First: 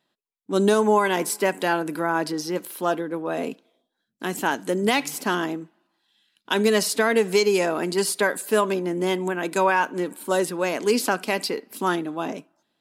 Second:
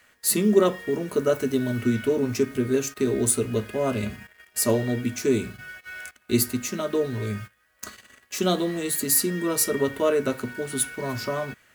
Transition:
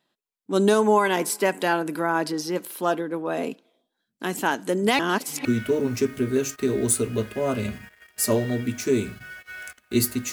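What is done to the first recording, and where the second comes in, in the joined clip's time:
first
0:04.99–0:05.45: reverse
0:05.45: continue with second from 0:01.83

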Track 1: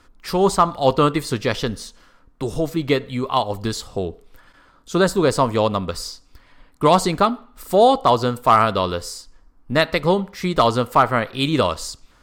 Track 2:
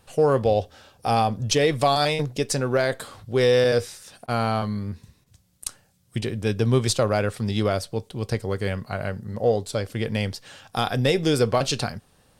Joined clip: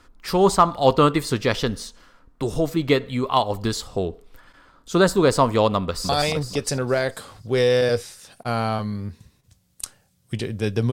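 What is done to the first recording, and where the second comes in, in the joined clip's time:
track 1
0:05.81–0:06.09: delay throw 230 ms, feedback 50%, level −1.5 dB
0:06.09: continue with track 2 from 0:01.92

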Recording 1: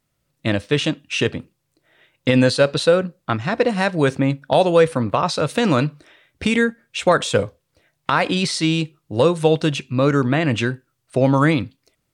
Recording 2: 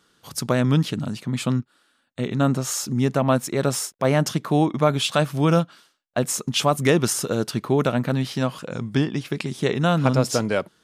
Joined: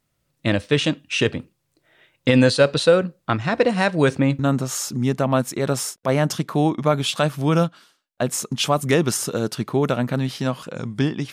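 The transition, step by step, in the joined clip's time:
recording 1
0:04.39: continue with recording 2 from 0:02.35

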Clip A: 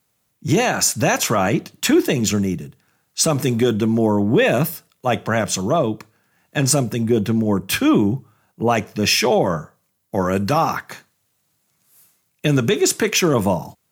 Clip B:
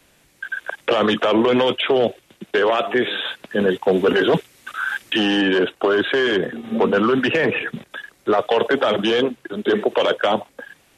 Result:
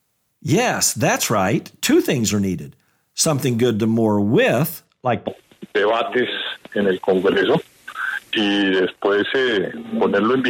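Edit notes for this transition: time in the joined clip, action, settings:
clip A
0:04.84–0:05.27: low-pass filter 6,900 Hz → 1,500 Hz
0:05.27: continue with clip B from 0:02.06

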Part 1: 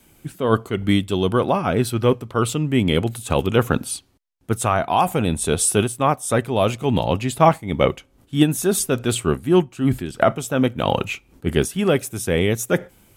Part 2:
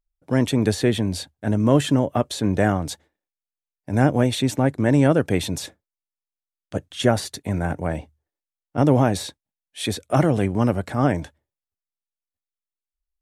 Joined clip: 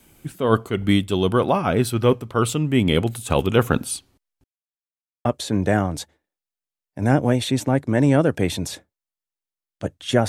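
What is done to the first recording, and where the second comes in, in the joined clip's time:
part 1
0:04.44–0:05.25: silence
0:05.25: continue with part 2 from 0:02.16

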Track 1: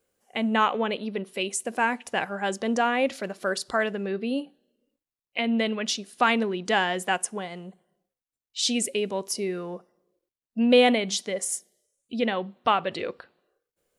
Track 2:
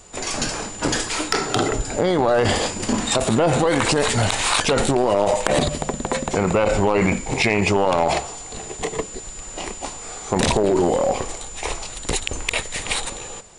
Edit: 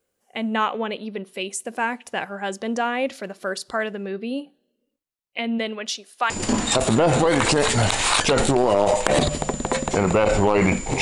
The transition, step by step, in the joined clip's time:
track 1
0:05.58–0:06.30: high-pass filter 190 Hz → 670 Hz
0:06.30: continue with track 2 from 0:02.70

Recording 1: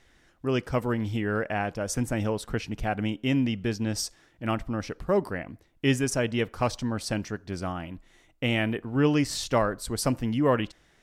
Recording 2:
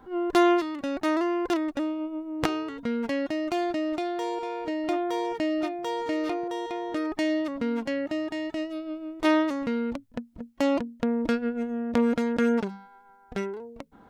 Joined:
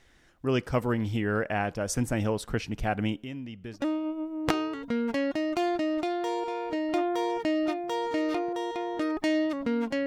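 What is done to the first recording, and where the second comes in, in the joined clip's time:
recording 1
0:03.16–0:03.83: downward compressor 2 to 1, threshold −47 dBFS
0:03.78: continue with recording 2 from 0:01.73, crossfade 0.10 s

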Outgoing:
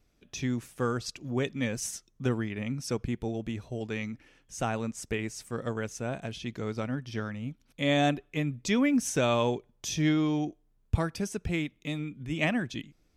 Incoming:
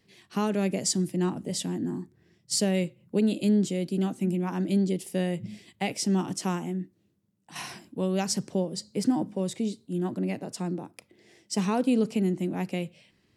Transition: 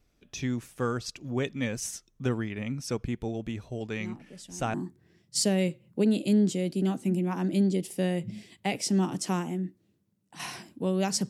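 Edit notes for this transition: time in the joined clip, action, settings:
outgoing
0:04.00: mix in incoming from 0:01.16 0.74 s −15.5 dB
0:04.74: continue with incoming from 0:01.90

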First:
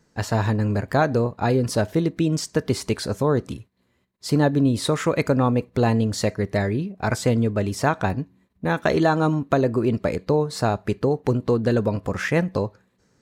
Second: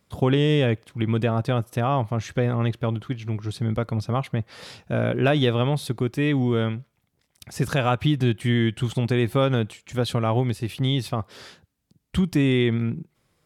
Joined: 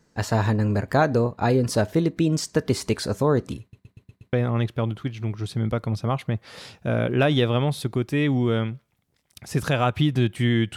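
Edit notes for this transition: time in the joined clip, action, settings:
first
0:03.61: stutter in place 0.12 s, 6 plays
0:04.33: continue with second from 0:02.38

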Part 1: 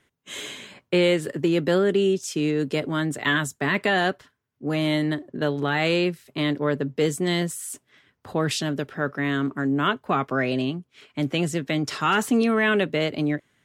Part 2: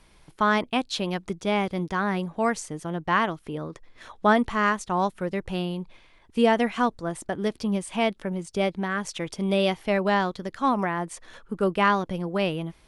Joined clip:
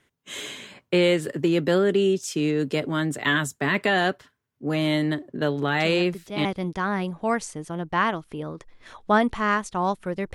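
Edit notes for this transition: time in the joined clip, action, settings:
part 1
0:05.80: mix in part 2 from 0:00.95 0.65 s −8 dB
0:06.45: continue with part 2 from 0:01.60

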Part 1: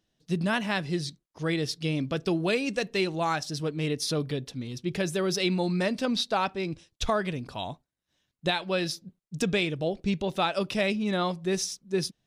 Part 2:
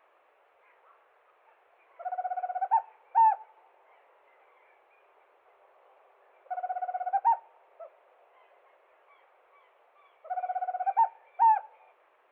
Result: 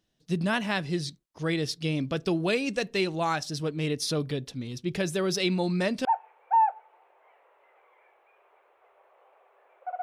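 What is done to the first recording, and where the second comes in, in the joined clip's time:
part 1
0:06.05: continue with part 2 from 0:02.69

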